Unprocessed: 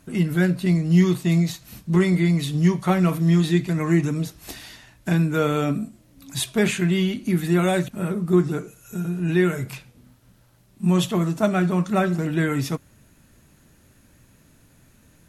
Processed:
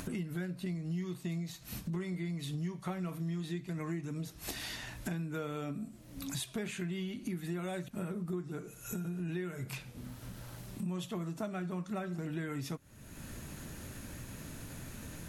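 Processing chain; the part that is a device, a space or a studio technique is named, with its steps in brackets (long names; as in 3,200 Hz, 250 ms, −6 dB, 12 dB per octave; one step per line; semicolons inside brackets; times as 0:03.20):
upward and downward compression (upward compression, threshold −20 dBFS; downward compressor, threshold −26 dBFS, peak gain reduction 13.5 dB)
level −9 dB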